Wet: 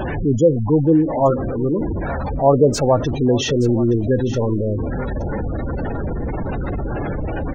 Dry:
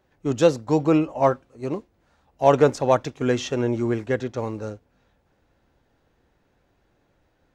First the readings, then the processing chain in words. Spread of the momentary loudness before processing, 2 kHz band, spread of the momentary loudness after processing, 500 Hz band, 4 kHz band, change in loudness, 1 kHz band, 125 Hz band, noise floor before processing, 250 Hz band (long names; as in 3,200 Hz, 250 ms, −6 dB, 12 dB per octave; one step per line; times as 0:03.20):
12 LU, +2.0 dB, 10 LU, +4.0 dB, +6.5 dB, +3.5 dB, +2.0 dB, +10.0 dB, −67 dBFS, +7.0 dB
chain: converter with a step at zero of −18 dBFS
low-shelf EQ 300 Hz +4 dB
gate on every frequency bin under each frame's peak −15 dB strong
single-tap delay 872 ms −15.5 dB